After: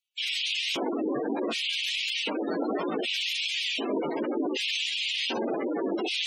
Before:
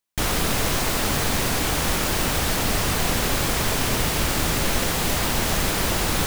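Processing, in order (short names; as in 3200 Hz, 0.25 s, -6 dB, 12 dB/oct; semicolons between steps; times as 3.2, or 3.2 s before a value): LFO high-pass square 0.66 Hz 320–2800 Hz; chorus 1.4 Hz, delay 16.5 ms, depth 5.8 ms; spectral gate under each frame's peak -10 dB strong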